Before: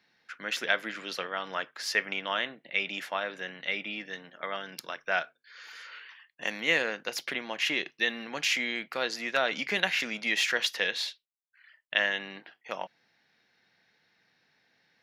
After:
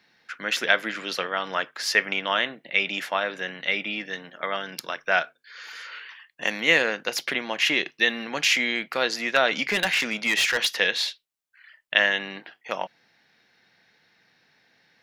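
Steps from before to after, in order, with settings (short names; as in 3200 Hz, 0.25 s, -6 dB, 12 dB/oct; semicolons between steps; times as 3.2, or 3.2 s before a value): 9.64–10.77 hard clip -23.5 dBFS, distortion -17 dB; gain +6.5 dB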